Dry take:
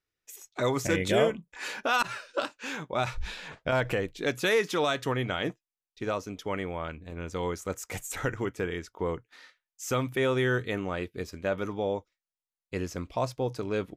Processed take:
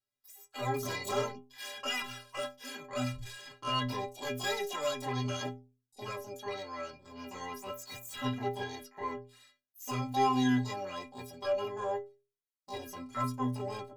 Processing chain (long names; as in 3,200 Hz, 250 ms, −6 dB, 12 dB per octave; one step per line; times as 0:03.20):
tube saturation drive 19 dB, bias 0.25
pitch-shifted copies added +12 semitones 0 dB
stiff-string resonator 120 Hz, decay 0.48 s, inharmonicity 0.03
level +4 dB